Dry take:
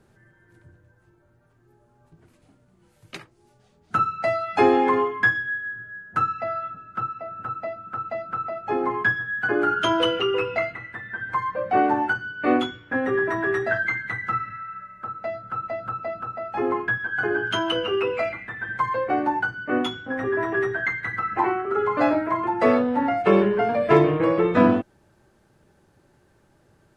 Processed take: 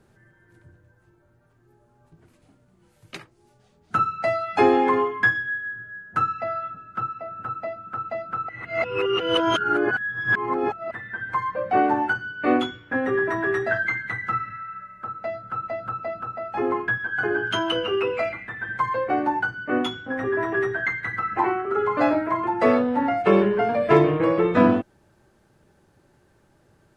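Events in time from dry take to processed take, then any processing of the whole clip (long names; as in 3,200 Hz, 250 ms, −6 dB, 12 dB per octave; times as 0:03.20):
0:08.49–0:10.91: reverse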